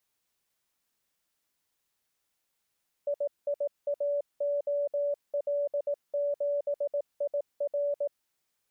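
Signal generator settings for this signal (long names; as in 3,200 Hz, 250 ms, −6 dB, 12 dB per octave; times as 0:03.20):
Morse code "IIAOL7IR" 18 words per minute 575 Hz −26 dBFS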